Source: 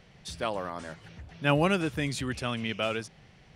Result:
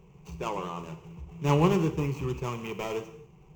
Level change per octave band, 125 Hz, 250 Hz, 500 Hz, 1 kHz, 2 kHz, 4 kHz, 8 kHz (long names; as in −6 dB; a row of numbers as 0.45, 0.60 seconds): +4.0, +1.5, +1.0, +0.5, −8.0, −7.5, −3.5 decibels